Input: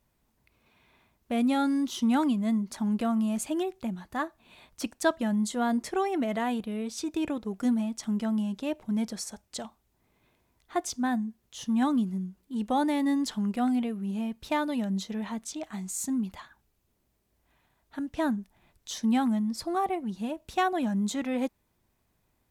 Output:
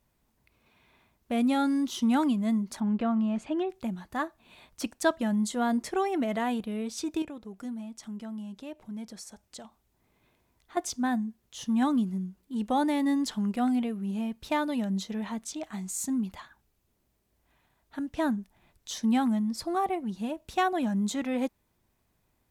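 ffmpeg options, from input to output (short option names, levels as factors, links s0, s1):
-filter_complex "[0:a]asettb=1/sr,asplit=3[s0][s1][s2];[s0]atrim=end=2.804[s3];[s1]atrim=start=2.8:end=3.7,asetpts=PTS-STARTPTS,afade=t=in:d=0.004:c=qsin,afade=t=out:st=0.896:d=0.004:c=qsin,lowpass=2900[s4];[s2]atrim=start=3.696[s5];[s3][s4]acrossfade=d=0.004:c1=hsin:c2=qsin[s6];[s6][s5]acrossfade=d=0.004:c1=qsin:c2=hsin,asettb=1/sr,asplit=3[s7][s8][s9];[s7]atrim=end=7.224[s10];[s8]atrim=start=7.22:end=10.77,asetpts=PTS-STARTPTS,afade=t=in:d=0.004:c=qsin,afade=t=out:st=3.546:d=0.004:c=qsin,acompressor=threshold=0.002:ratio=1.5:attack=3.2:release=140:knee=1:detection=peak[s11];[s9]atrim=start=10.766[s12];[s10][s11]acrossfade=d=0.004:c1=hsin:c2=qsin[s13];[s13][s12]acrossfade=d=0.004:c1=qsin:c2=hsin"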